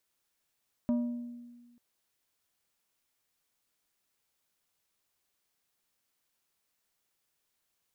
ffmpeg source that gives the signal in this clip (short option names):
-f lavfi -i "aevalsrc='0.0631*pow(10,-3*t/1.49)*sin(2*PI*240*t)+0.0178*pow(10,-3*t/0.785)*sin(2*PI*600*t)+0.00501*pow(10,-3*t/0.565)*sin(2*PI*960*t)+0.00141*pow(10,-3*t/0.483)*sin(2*PI*1200*t)+0.000398*pow(10,-3*t/0.402)*sin(2*PI*1560*t)':d=0.89:s=44100"